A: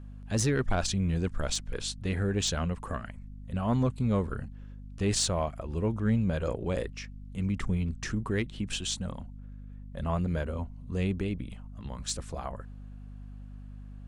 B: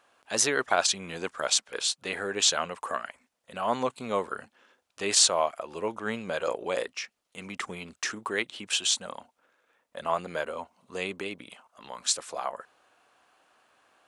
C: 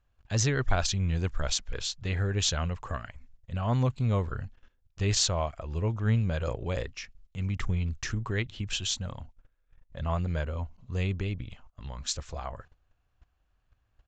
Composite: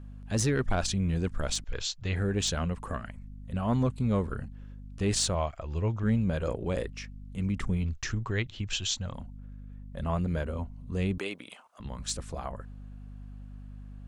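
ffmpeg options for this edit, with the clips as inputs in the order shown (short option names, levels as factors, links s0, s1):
-filter_complex "[2:a]asplit=3[s0][s1][s2];[0:a]asplit=5[s3][s4][s5][s6][s7];[s3]atrim=end=1.642[s8];[s0]atrim=start=1.638:end=2.162[s9];[s4]atrim=start=2.158:end=5.352[s10];[s1]atrim=start=5.348:end=6.032[s11];[s5]atrim=start=6.028:end=7.842[s12];[s2]atrim=start=7.838:end=9.142[s13];[s6]atrim=start=9.138:end=11.182[s14];[1:a]atrim=start=11.178:end=11.802[s15];[s7]atrim=start=11.798[s16];[s8][s9]acrossfade=d=0.004:c1=hsin:c2=hsin[s17];[s17][s10]acrossfade=d=0.004:c1=hsin:c2=hsin[s18];[s18][s11]acrossfade=d=0.004:c1=hsin:c2=hsin[s19];[s19][s12]acrossfade=d=0.004:c1=hsin:c2=hsin[s20];[s20][s13]acrossfade=d=0.004:c1=hsin:c2=hsin[s21];[s21][s14]acrossfade=d=0.004:c1=hsin:c2=hsin[s22];[s22][s15]acrossfade=d=0.004:c1=hsin:c2=hsin[s23];[s23][s16]acrossfade=d=0.004:c1=hsin:c2=hsin"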